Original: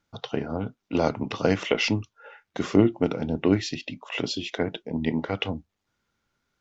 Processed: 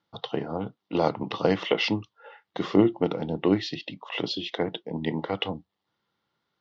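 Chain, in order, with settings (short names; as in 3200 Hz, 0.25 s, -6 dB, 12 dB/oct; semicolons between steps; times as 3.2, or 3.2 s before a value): speaker cabinet 180–4200 Hz, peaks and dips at 250 Hz -10 dB, 410 Hz -4 dB, 620 Hz -5 dB, 1500 Hz -9 dB, 2400 Hz -10 dB; gain +4 dB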